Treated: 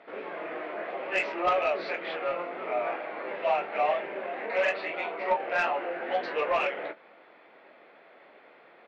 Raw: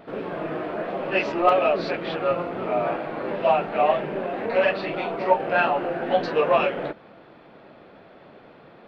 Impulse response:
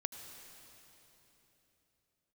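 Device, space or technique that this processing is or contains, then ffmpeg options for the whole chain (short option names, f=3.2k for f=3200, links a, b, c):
intercom: -filter_complex "[0:a]highpass=430,lowpass=4.3k,equalizer=f=2.1k:t=o:w=0.45:g=8.5,asoftclip=type=tanh:threshold=-11.5dB,asplit=2[a][b];[b]adelay=23,volume=-10.5dB[c];[a][c]amix=inputs=2:normalize=0,volume=-5.5dB"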